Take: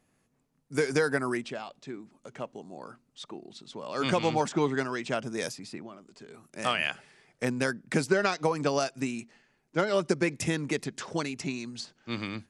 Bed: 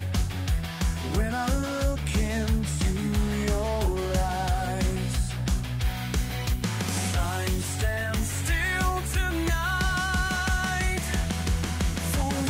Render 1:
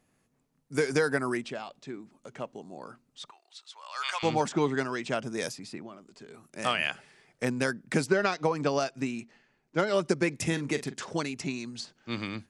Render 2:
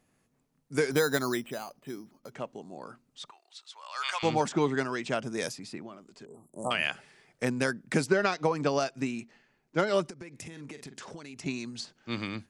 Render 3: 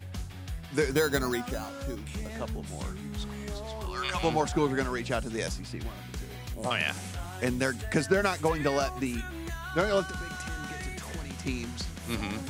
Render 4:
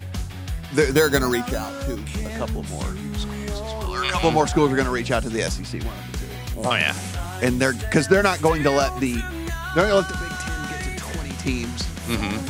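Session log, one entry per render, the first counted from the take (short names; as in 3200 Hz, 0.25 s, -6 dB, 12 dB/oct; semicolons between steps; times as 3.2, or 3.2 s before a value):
3.3–4.23 HPF 940 Hz 24 dB/oct; 8.06–9.77 air absorption 57 m; 10.43–11.05 doubler 42 ms -12.5 dB
0.91–2.32 careless resampling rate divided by 8×, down filtered, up hold; 6.25–6.71 Chebyshev band-stop 1000–7600 Hz, order 4; 10.09–11.46 compressor 20:1, threshold -39 dBFS
add bed -11.5 dB
gain +8.5 dB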